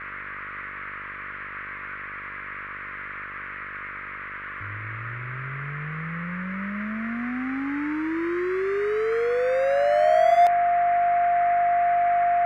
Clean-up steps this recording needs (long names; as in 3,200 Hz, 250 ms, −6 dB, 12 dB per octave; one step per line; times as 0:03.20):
hum removal 49.1 Hz, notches 13
notch filter 700 Hz, Q 30
noise reduction from a noise print 30 dB